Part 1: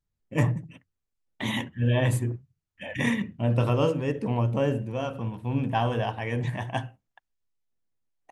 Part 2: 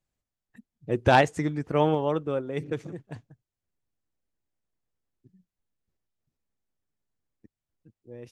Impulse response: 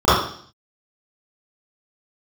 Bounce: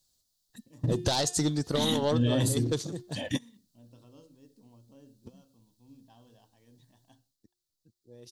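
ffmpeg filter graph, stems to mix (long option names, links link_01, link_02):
-filter_complex "[0:a]equalizer=frequency=270:width_type=o:width=0.56:gain=10,adelay=350,volume=-5.5dB[link_01];[1:a]highshelf=frequency=4500:gain=5,bandreject=frequency=356.6:width_type=h:width=4,bandreject=frequency=713.2:width_type=h:width=4,bandreject=frequency=1069.8:width_type=h:width=4,bandreject=frequency=1426.4:width_type=h:width=4,bandreject=frequency=1783:width_type=h:width=4,bandreject=frequency=2139.6:width_type=h:width=4,bandreject=frequency=2496.2:width_type=h:width=4,bandreject=frequency=2852.8:width_type=h:width=4,bandreject=frequency=3209.4:width_type=h:width=4,bandreject=frequency=3566:width_type=h:width=4,bandreject=frequency=3922.6:width_type=h:width=4,bandreject=frequency=4279.2:width_type=h:width=4,bandreject=frequency=4635.8:width_type=h:width=4,bandreject=frequency=4992.4:width_type=h:width=4,asoftclip=type=tanh:threshold=-20dB,volume=-4dB,afade=type=out:start_time=7.07:duration=0.3:silence=0.316228,asplit=2[link_02][link_03];[link_03]apad=whole_len=382146[link_04];[link_01][link_04]sidechaingate=range=-35dB:threshold=-56dB:ratio=16:detection=peak[link_05];[link_05][link_02]amix=inputs=2:normalize=0,highshelf=frequency=3100:width_type=q:width=3:gain=10.5,acontrast=56,alimiter=limit=-17.5dB:level=0:latency=1:release=124"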